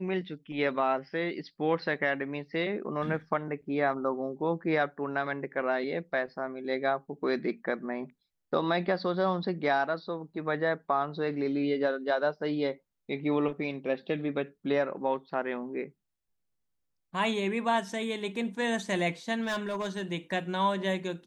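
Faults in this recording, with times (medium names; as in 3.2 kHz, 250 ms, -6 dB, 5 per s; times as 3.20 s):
19.43–20.02 s: clipped -27.5 dBFS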